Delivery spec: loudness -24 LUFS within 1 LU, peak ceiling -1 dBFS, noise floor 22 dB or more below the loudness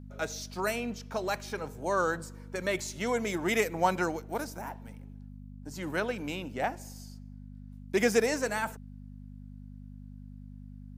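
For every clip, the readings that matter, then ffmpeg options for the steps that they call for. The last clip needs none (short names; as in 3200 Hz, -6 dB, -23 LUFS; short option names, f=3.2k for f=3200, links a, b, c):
hum 50 Hz; harmonics up to 250 Hz; hum level -44 dBFS; loudness -31.5 LUFS; peak -12.0 dBFS; loudness target -24.0 LUFS
-> -af "bandreject=f=50:t=h:w=4,bandreject=f=100:t=h:w=4,bandreject=f=150:t=h:w=4,bandreject=f=200:t=h:w=4,bandreject=f=250:t=h:w=4"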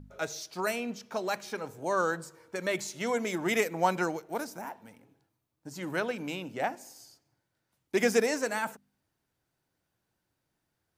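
hum none; loudness -31.5 LUFS; peak -12.0 dBFS; loudness target -24.0 LUFS
-> -af "volume=7.5dB"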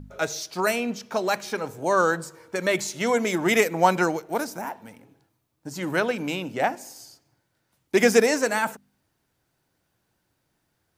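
loudness -24.0 LUFS; peak -4.5 dBFS; noise floor -74 dBFS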